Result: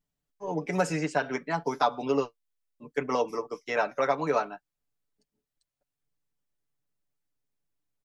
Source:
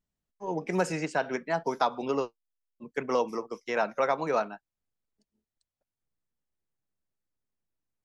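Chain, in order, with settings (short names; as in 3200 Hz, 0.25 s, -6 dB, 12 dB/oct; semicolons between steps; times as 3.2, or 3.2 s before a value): comb 6.9 ms, depth 62%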